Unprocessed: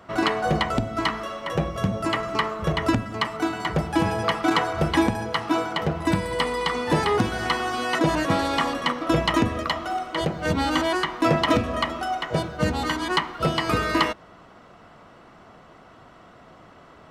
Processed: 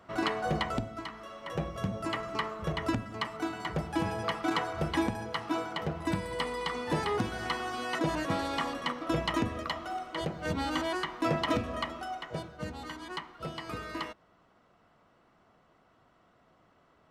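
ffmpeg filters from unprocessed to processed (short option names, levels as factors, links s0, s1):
-af "volume=1.06,afade=t=out:st=0.75:d=0.32:silence=0.334965,afade=t=in:st=1.07:d=0.54:silence=0.375837,afade=t=out:st=11.73:d=0.97:silence=0.446684"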